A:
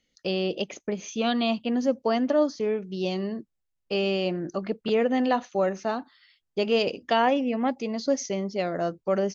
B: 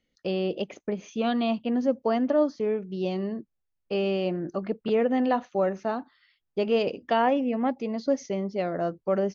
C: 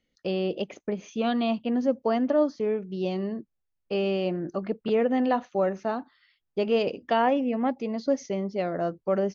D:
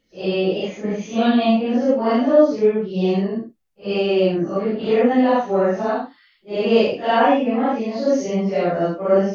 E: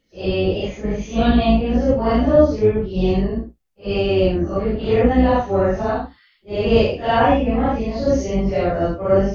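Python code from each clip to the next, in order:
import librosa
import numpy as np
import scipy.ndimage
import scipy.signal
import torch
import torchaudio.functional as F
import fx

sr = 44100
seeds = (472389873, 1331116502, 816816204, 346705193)

y1 = fx.lowpass(x, sr, hz=1800.0, slope=6)
y2 = y1
y3 = fx.phase_scramble(y2, sr, seeds[0], window_ms=200)
y3 = y3 * librosa.db_to_amplitude(8.5)
y4 = fx.octave_divider(y3, sr, octaves=2, level_db=-2.0)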